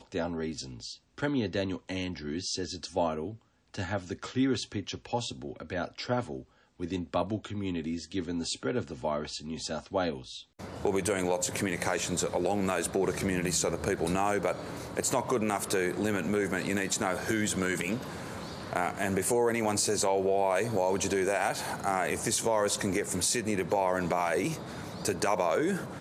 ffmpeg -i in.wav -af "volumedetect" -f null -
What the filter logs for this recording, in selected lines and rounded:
mean_volume: -31.0 dB
max_volume: -11.6 dB